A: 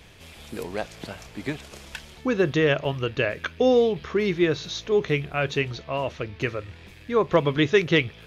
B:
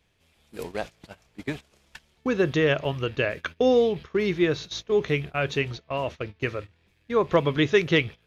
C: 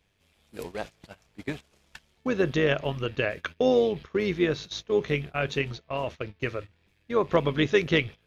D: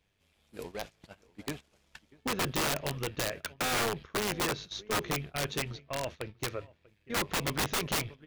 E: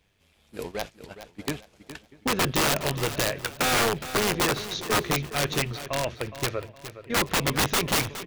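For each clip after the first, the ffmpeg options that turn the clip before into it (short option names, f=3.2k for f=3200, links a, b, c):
-af "agate=range=-18dB:threshold=-33dB:ratio=16:detection=peak,volume=-1dB"
-af "tremolo=f=100:d=0.462"
-filter_complex "[0:a]aeval=exprs='0.355*(cos(1*acos(clip(val(0)/0.355,-1,1)))-cos(1*PI/2))+0.00891*(cos(6*acos(clip(val(0)/0.355,-1,1)))-cos(6*PI/2))':c=same,asplit=2[a][b];[b]adelay=641.4,volume=-23dB,highshelf=f=4k:g=-14.4[c];[a][c]amix=inputs=2:normalize=0,aeval=exprs='(mod(10*val(0)+1,2)-1)/10':c=same,volume=-4.5dB"
-af "aecho=1:1:415|830|1245:0.237|0.0783|0.0258,volume=7dB"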